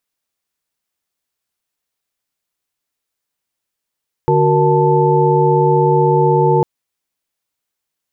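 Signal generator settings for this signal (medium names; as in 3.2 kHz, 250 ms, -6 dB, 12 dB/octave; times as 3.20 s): chord D3/F#4/A#4/A5 sine, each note -15 dBFS 2.35 s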